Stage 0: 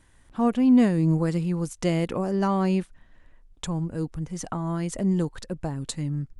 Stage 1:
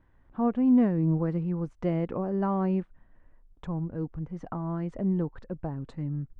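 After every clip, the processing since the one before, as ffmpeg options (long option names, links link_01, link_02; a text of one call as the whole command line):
ffmpeg -i in.wav -af "lowpass=1400,volume=-3.5dB" out.wav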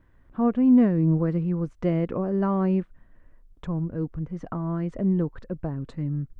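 ffmpeg -i in.wav -af "equalizer=frequency=830:width=3.7:gain=-6.5,volume=4dB" out.wav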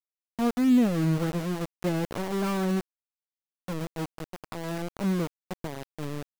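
ffmpeg -i in.wav -af "aeval=exprs='val(0)*gte(abs(val(0)),0.0531)':channel_layout=same,volume=-3.5dB" out.wav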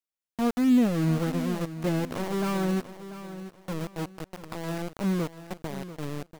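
ffmpeg -i in.wav -af "aecho=1:1:690|1380|2070:0.224|0.0694|0.0215" out.wav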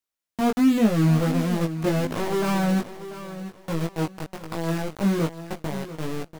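ffmpeg -i in.wav -af "flanger=delay=18:depth=2:speed=1.3,volume=8dB" out.wav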